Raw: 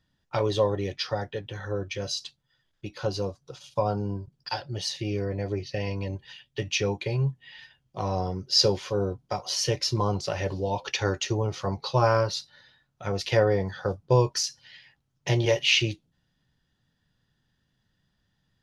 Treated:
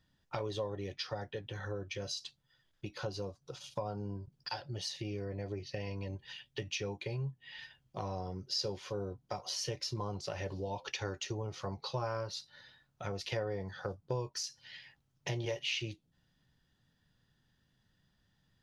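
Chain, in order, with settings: compressor 2.5:1, threshold -39 dBFS, peak gain reduction 16 dB; gain -1 dB

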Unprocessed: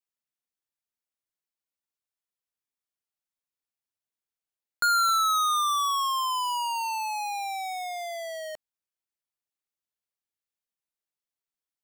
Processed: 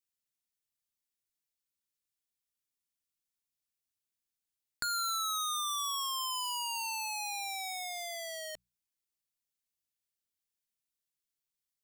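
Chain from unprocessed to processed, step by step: compressor, threshold -31 dBFS, peak gain reduction 8 dB; bell 790 Hz -12.5 dB 2.7 oct; notches 60/120/180 Hz; Doppler distortion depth 0.13 ms; gain +3.5 dB

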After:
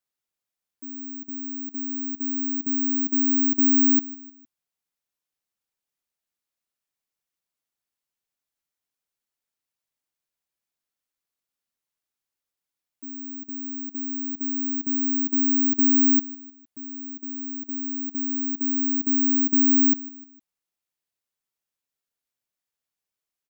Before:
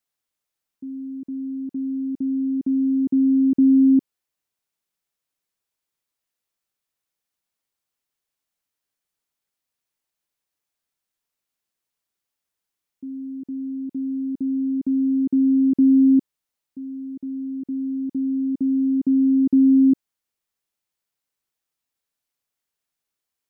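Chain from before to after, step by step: on a send: feedback echo 0.153 s, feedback 45%, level -19.5 dB; on the sum: careless resampling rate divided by 2×, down none, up zero stuff; gain -7.5 dB

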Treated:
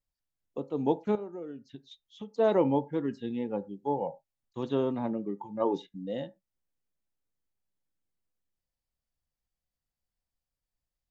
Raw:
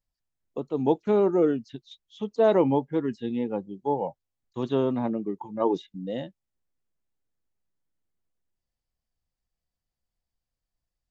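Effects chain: 1.15–2.34 compressor 5:1, threshold -35 dBFS, peak gain reduction 16 dB; reverb, pre-delay 3 ms, DRR 13.5 dB; gain -4 dB

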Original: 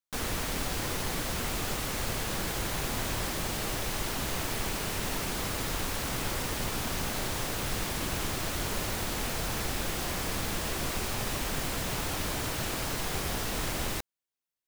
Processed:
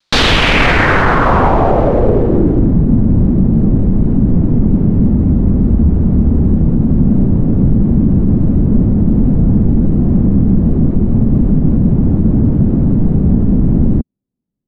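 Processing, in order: wow and flutter 99 cents; 5.1–6.69 frequency shift -89 Hz; in parallel at +3 dB: hard clip -30 dBFS, distortion -12 dB; on the sum: low-pass sweep 4300 Hz -> 220 Hz, 0.07–2.79; maximiser +18.5 dB; gain -1 dB

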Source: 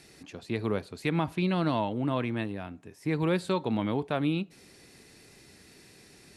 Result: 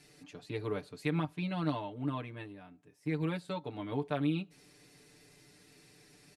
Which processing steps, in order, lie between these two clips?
comb 6.8 ms, depth 96%; 1.25–3.92 upward expander 1.5:1, over -35 dBFS; gain -8.5 dB

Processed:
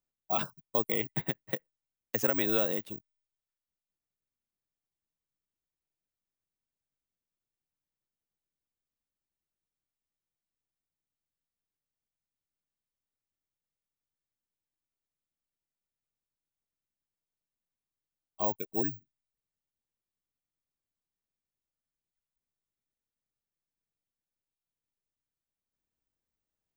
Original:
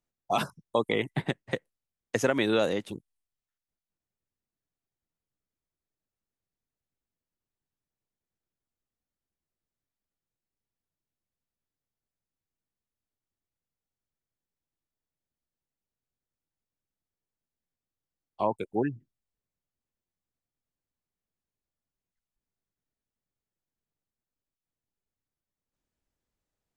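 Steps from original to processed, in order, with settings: careless resampling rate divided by 2×, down filtered, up zero stuff; gain -6 dB

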